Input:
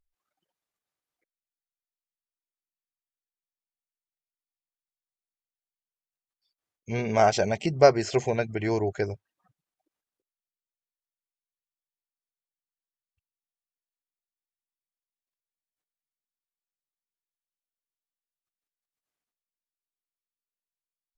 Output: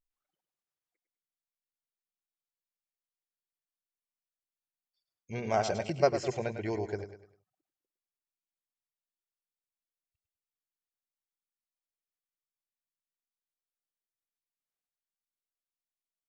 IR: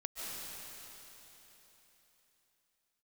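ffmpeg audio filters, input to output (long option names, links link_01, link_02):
-af "aecho=1:1:131|262|393|524:0.335|0.124|0.0459|0.017,atempo=1.3,volume=-7.5dB"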